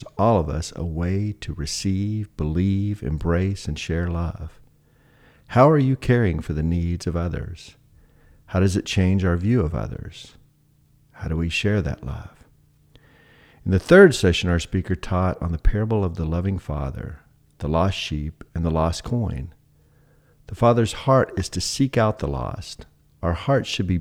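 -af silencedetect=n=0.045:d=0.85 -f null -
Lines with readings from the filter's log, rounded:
silence_start: 4.46
silence_end: 5.52 | silence_duration: 1.06
silence_start: 7.53
silence_end: 8.54 | silence_duration: 1.01
silence_start: 10.08
silence_end: 11.22 | silence_duration: 1.15
silence_start: 12.21
silence_end: 13.66 | silence_duration: 1.45
silence_start: 19.45
silence_end: 20.49 | silence_duration: 1.04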